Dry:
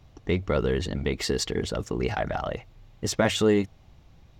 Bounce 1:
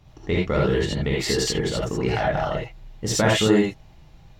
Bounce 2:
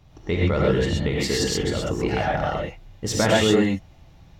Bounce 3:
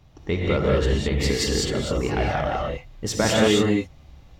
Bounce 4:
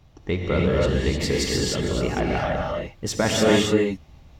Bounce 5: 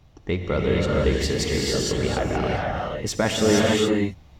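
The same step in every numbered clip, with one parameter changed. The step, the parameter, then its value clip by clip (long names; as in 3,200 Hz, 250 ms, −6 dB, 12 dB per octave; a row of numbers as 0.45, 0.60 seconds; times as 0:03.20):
reverb whose tail is shaped and stops, gate: 100, 150, 230, 330, 500 milliseconds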